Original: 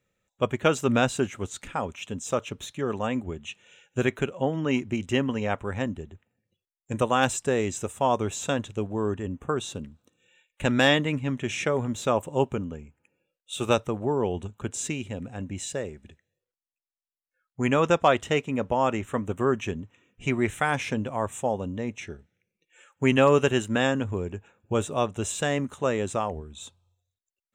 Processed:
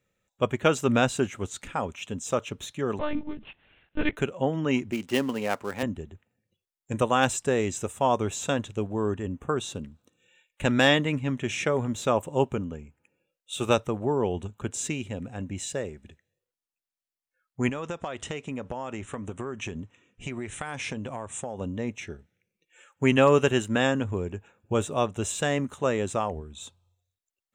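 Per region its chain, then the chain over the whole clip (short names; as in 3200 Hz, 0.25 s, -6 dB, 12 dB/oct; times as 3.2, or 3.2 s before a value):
2.99–4.17 switching dead time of 0.12 ms + monotone LPC vocoder at 8 kHz 300 Hz
4.91–5.83 switching dead time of 0.086 ms + HPF 200 Hz
17.69–21.61 steep low-pass 10000 Hz 96 dB/oct + compressor 12:1, threshold -29 dBFS + high shelf 4900 Hz +3.5 dB
whole clip: dry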